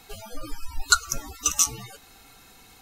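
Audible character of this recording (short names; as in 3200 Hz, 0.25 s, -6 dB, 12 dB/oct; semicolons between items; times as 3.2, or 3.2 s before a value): noise floor -53 dBFS; spectral tilt -1.0 dB/oct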